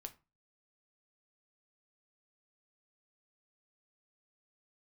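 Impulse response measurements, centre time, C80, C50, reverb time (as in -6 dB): 5 ms, 24.0 dB, 17.5 dB, 0.30 s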